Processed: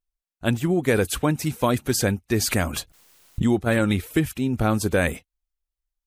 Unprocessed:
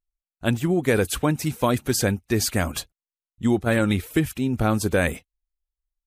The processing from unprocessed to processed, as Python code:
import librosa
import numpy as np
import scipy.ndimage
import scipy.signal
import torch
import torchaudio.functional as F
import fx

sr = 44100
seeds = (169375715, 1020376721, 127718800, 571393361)

y = fx.pre_swell(x, sr, db_per_s=66.0, at=(2.5, 3.49), fade=0.02)